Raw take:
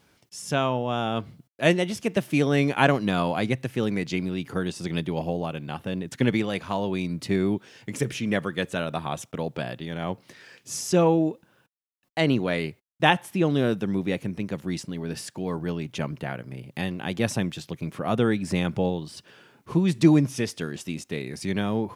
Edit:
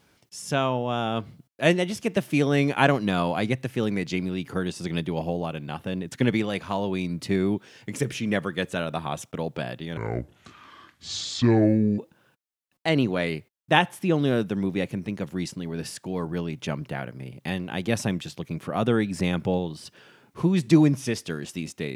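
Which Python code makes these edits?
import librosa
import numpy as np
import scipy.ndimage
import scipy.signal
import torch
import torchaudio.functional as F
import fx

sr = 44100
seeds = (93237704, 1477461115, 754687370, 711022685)

y = fx.edit(x, sr, fx.speed_span(start_s=9.97, length_s=1.33, speed=0.66), tone=tone)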